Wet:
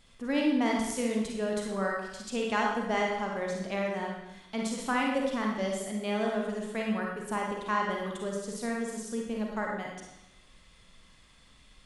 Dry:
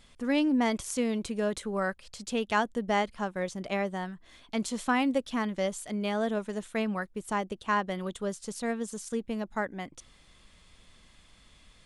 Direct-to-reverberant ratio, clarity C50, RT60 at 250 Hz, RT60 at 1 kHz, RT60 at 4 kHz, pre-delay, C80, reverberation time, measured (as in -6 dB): -1.5 dB, 0.0 dB, 0.95 s, 0.95 s, 0.85 s, 37 ms, 4.5 dB, 0.95 s